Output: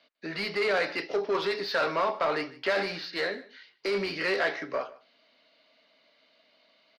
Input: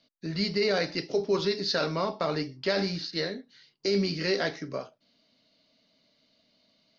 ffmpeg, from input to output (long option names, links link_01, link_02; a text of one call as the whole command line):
ffmpeg -i in.wav -filter_complex "[0:a]asplit=2[link_01][link_02];[link_02]highpass=frequency=720:poles=1,volume=17dB,asoftclip=type=tanh:threshold=-15.5dB[link_03];[link_01][link_03]amix=inputs=2:normalize=0,lowpass=frequency=1000:poles=1,volume=-6dB,highshelf=frequency=6000:gain=4.5,acrossover=split=160|2900[link_04][link_05][link_06];[link_05]crystalizer=i=9:c=0[link_07];[link_04][link_07][link_06]amix=inputs=3:normalize=0,bass=frequency=250:gain=-9,treble=frequency=4000:gain=-3,aecho=1:1:150:0.0944,volume=-3dB" out.wav